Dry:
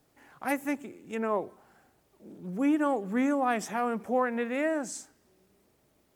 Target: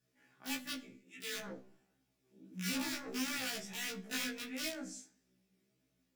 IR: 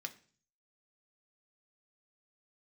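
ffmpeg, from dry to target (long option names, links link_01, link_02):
-filter_complex "[0:a]highshelf=frequency=4800:gain=-5,aeval=exprs='(mod(11.2*val(0)+1,2)-1)/11.2':channel_layout=same,asettb=1/sr,asplit=3[link_01][link_02][link_03];[link_01]atrim=end=0.934[link_04];[link_02]atrim=start=0.93:end=3.13,asetpts=PTS-STARTPTS,afade=type=in:duration=0.004:curve=qsin,afade=type=out:start_time=2.196:duration=0.004:curve=qsin,acrossover=split=1400[link_05][link_06];[link_05]adelay=110[link_07];[link_07][link_06]amix=inputs=2:normalize=0,atrim=end_sample=97020[link_08];[link_03]atrim=start=3.126[link_09];[link_04][link_08]acrossfade=duration=0.004:curve1=hsin:curve2=qsin[link_10];[link_10][link_09]acrossfade=duration=0.004:curve1=qsin:curve2=hsin[link_11];[1:a]atrim=start_sample=2205,afade=type=out:start_time=0.35:duration=0.01,atrim=end_sample=15876[link_12];[link_11][link_12]afir=irnorm=-1:irlink=0,asoftclip=type=hard:threshold=-21.5dB,equalizer=frequency=930:width=0.74:gain=-11.5,flanger=delay=16:depth=7.9:speed=1.5,afftfilt=real='re*1.73*eq(mod(b,3),0)':imag='im*1.73*eq(mod(b,3),0)':win_size=2048:overlap=0.75,volume=2dB"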